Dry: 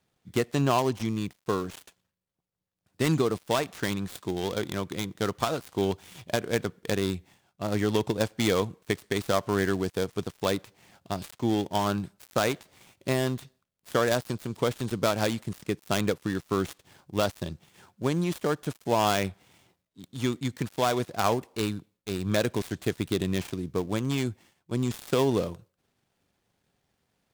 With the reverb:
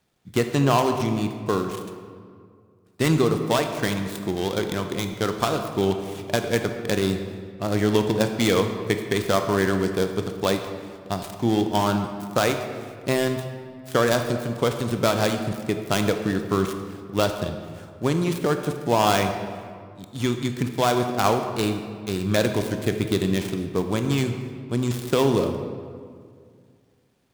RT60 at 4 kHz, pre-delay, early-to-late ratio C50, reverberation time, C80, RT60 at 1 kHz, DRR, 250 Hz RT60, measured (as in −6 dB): 1.2 s, 22 ms, 7.0 dB, 2.1 s, 8.5 dB, 2.0 s, 6.0 dB, 2.5 s